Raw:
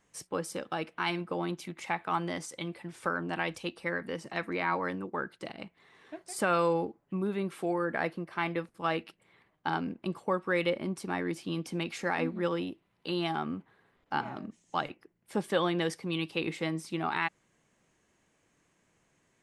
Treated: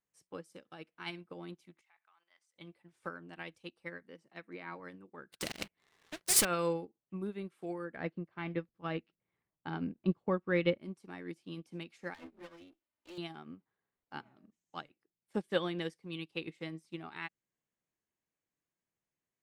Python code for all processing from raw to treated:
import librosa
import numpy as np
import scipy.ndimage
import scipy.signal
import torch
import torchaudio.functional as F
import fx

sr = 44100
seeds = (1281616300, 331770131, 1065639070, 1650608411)

y = fx.chain(x, sr, fx.highpass(hz=1400.0, slope=12),
    fx.high_shelf(hz=4000.0, db=-7.0),
    fx.level_steps(step_db=11), at=(1.81, 2.56))
y = fx.chain(y, sr, fx.highpass(hz=120.0, slope=12),
    fx.high_shelf(hz=2600.0, db=-4.0), at=(4.03, 4.8))
y = fx.chain(y, sr, fx.high_shelf(hz=10000.0, db=8.0),
    fx.leveller(passes=3),
    fx.spectral_comp(ratio=2.0), at=(5.32, 6.45))
y = fx.chain(y, sr, fx.gaussian_blur(sigma=1.8),
    fx.low_shelf(hz=230.0, db=8.5), at=(7.96, 10.79))
y = fx.chain(y, sr, fx.lower_of_two(delay_ms=3.3),
    fx.low_shelf(hz=110.0, db=-11.5),
    fx.band_squash(depth_pct=40), at=(12.14, 13.18))
y = fx.dynamic_eq(y, sr, hz=910.0, q=1.0, threshold_db=-44.0, ratio=4.0, max_db=-6)
y = fx.upward_expand(y, sr, threshold_db=-42.0, expansion=2.5)
y = y * 10.0 ** (3.0 / 20.0)